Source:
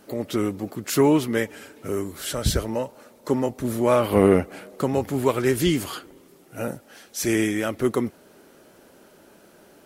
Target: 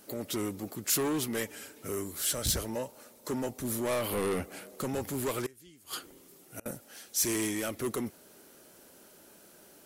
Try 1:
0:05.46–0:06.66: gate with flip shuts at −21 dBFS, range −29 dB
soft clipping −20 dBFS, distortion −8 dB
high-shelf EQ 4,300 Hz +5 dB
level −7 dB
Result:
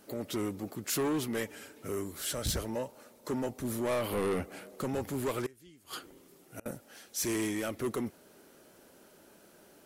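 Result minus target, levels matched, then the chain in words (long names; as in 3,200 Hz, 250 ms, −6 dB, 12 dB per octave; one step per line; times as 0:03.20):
8,000 Hz band −4.0 dB
0:05.46–0:06.66: gate with flip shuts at −21 dBFS, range −29 dB
soft clipping −20 dBFS, distortion −8 dB
high-shelf EQ 4,300 Hz +12.5 dB
level −7 dB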